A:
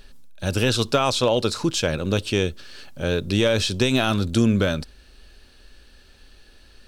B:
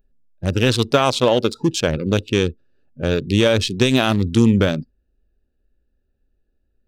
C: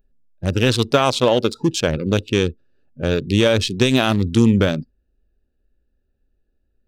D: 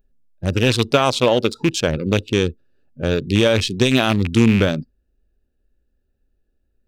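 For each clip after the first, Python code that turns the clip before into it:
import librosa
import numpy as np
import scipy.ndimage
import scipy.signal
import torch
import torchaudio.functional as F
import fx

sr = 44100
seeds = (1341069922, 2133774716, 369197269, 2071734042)

y1 = fx.wiener(x, sr, points=41)
y1 = fx.noise_reduce_blind(y1, sr, reduce_db=21)
y1 = F.gain(torch.from_numpy(y1), 5.0).numpy()
y2 = y1
y3 = fx.rattle_buzz(y2, sr, strikes_db=-18.0, level_db=-13.0)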